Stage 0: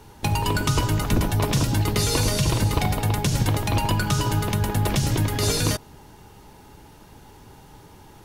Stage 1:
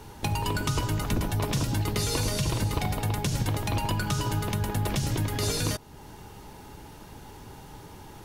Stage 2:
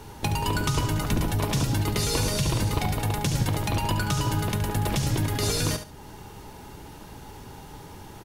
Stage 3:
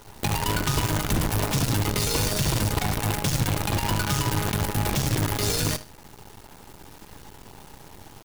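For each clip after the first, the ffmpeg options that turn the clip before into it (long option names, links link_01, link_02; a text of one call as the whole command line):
ffmpeg -i in.wav -af "acompressor=threshold=-40dB:ratio=1.5,volume=2dB" out.wav
ffmpeg -i in.wav -af "aecho=1:1:71|142|213:0.316|0.0696|0.0153,volume=2dB" out.wav
ffmpeg -i in.wav -af "acrusher=bits=5:dc=4:mix=0:aa=0.000001" out.wav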